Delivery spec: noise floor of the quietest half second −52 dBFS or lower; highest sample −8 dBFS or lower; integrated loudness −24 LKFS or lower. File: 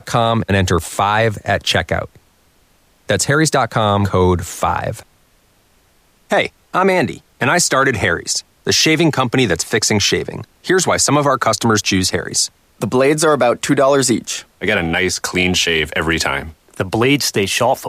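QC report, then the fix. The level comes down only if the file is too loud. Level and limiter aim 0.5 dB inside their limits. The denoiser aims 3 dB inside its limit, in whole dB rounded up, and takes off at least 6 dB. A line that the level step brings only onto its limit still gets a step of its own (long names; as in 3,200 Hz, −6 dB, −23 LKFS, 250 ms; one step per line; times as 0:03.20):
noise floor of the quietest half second −55 dBFS: in spec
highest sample −4.0 dBFS: out of spec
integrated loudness −15.5 LKFS: out of spec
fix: level −9 dB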